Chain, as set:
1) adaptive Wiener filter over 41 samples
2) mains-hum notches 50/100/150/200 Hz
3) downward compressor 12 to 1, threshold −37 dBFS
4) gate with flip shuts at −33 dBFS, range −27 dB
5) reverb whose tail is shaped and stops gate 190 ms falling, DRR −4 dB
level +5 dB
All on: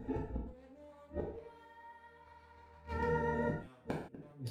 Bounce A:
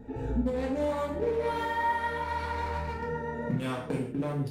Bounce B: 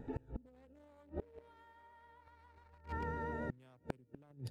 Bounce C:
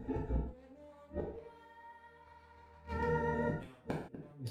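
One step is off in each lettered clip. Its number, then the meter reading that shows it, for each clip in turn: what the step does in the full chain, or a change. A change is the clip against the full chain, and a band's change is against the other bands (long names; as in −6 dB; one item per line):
4, change in momentary loudness spread −18 LU
5, change in momentary loudness spread −1 LU
2, 125 Hz band +1.5 dB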